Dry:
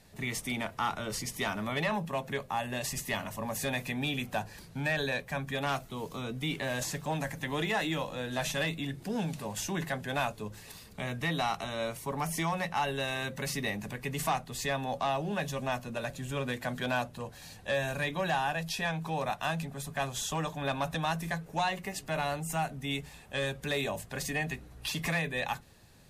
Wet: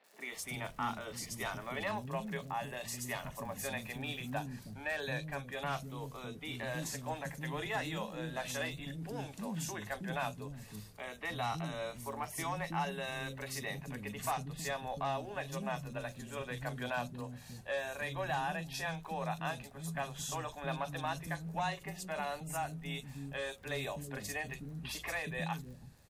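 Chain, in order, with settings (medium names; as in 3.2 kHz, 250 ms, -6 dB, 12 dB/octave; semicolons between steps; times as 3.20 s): crackle 150 per s -42 dBFS, from 4.31 s 13 per s; three bands offset in time mids, highs, lows 40/320 ms, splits 310/3300 Hz; trim -5 dB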